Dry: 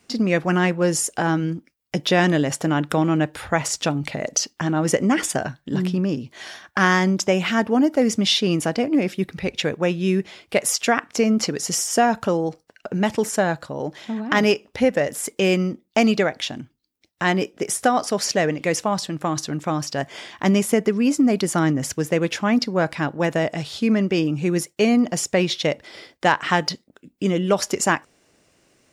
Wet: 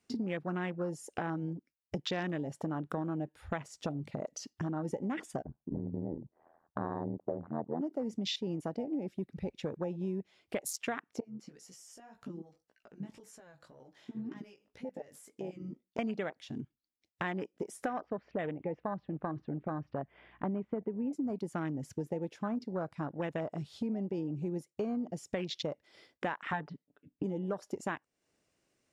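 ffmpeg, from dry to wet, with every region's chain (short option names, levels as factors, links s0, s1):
-filter_complex "[0:a]asettb=1/sr,asplit=3[s0][s1][s2];[s0]atrim=end=5.424[s3];[s1]atrim=start=5.42:end=7.81,asetpts=PTS-STARTPTS,afade=t=in:d=0.004:c=qsin,afade=t=out:st=2.386:d=0.004:c=qsin,lowpass=f=1000:w=0.5412,lowpass=f=1000:w=1.3066,adynamicequalizer=threshold=0.0282:dfrequency=620:dqfactor=0.89:tfrequency=620:tqfactor=0.89:attack=5:release=100:ratio=0.375:range=3:mode=boostabove:tftype=bell,tremolo=f=82:d=1[s4];[s2]atrim=start=7.806[s5];[s3][s4]acrossfade=d=0.004:c1=hsin:c2=qsin[s6];[s6][s5]acrossfade=d=0.004:c1=qsin:c2=hsin,asettb=1/sr,asplit=3[s7][s8][s9];[s7]atrim=end=11.204[s10];[s8]atrim=start=11.2:end=15.99,asetpts=PTS-STARTPTS,afade=t=in:d=0.004:c=qsin,afade=t=out:st=4.786:d=0.004:c=qsin,acompressor=threshold=0.0316:ratio=16:attack=3.2:release=140:knee=1:detection=peak,flanger=delay=15.5:depth=4.8:speed=1.9[s11];[s9]atrim=start=15.986[s12];[s10][s11]acrossfade=d=0.004:c1=hsin:c2=qsin[s13];[s13][s12]acrossfade=d=0.004:c1=qsin:c2=hsin,asettb=1/sr,asplit=3[s14][s15][s16];[s14]atrim=end=18.004[s17];[s15]atrim=start=18:end=21.13,asetpts=PTS-STARTPTS,afade=t=in:d=0.004:c=qsin,afade=t=out:st=3.126:d=0.004:c=qsin,lowpass=f=2500:w=0.5412,lowpass=f=2500:w=1.3066,aeval=exprs='val(0)+0.00282*(sin(2*PI*60*n/s)+sin(2*PI*2*60*n/s)/2+sin(2*PI*3*60*n/s)/3+sin(2*PI*4*60*n/s)/4+sin(2*PI*5*60*n/s)/5)':c=same[s18];[s16]atrim=start=21.126[s19];[s17][s18]acrossfade=d=0.004:c1=hsin:c2=qsin[s20];[s20][s19]acrossfade=d=0.004:c1=qsin:c2=hsin,asettb=1/sr,asplit=3[s21][s22][s23];[s21]atrim=end=26.524[s24];[s22]atrim=start=26.52:end=27.24,asetpts=PTS-STARTPTS,afade=t=in:d=0.004:c=qsin,afade=t=out:st=0.716:d=0.004:c=qsin,lowpass=2500,aecho=1:1:6.9:0.91,atrim=end_sample=31752[s25];[s23]atrim=start=27.236[s26];[s24][s25]acrossfade=d=0.004:c1=hsin:c2=qsin[s27];[s27][s26]acrossfade=d=0.004:c1=qsin:c2=hsin,afwtdn=0.0562,acompressor=threshold=0.0178:ratio=4,volume=0.891"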